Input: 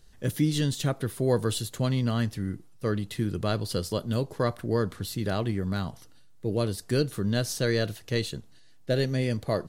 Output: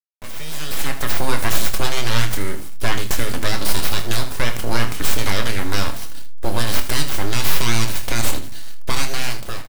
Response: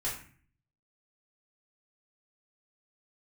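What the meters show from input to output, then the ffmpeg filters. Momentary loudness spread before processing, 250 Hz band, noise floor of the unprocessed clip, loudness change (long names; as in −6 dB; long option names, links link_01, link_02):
7 LU, −1.0 dB, −51 dBFS, +5.5 dB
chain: -filter_complex "[0:a]highshelf=frequency=6800:gain=7.5,acrossover=split=820[link_01][link_02];[link_01]acompressor=threshold=-41dB:ratio=6[link_03];[link_03][link_02]amix=inputs=2:normalize=0,alimiter=level_in=3dB:limit=-24dB:level=0:latency=1:release=74,volume=-3dB,dynaudnorm=framelen=220:gausssize=7:maxgain=16dB,aeval=exprs='abs(val(0))':channel_layout=same,acrusher=bits=6:mix=0:aa=0.000001,aecho=1:1:26|79:0.316|0.224,asplit=2[link_04][link_05];[1:a]atrim=start_sample=2205,asetrate=70560,aresample=44100,lowpass=5300[link_06];[link_05][link_06]afir=irnorm=-1:irlink=0,volume=-9dB[link_07];[link_04][link_07]amix=inputs=2:normalize=0,volume=2.5dB"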